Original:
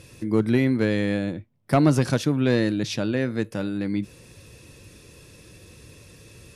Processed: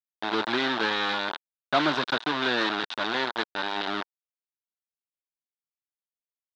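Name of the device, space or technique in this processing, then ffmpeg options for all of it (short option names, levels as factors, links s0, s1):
hand-held game console: -af "acrusher=bits=3:mix=0:aa=0.000001,highpass=420,equalizer=f=500:t=q:w=4:g=-7,equalizer=f=930:t=q:w=4:g=5,equalizer=f=1500:t=q:w=4:g=7,equalizer=f=2200:t=q:w=4:g=-3,equalizer=f=3700:t=q:w=4:g=9,lowpass=f=4200:w=0.5412,lowpass=f=4200:w=1.3066,volume=0.841"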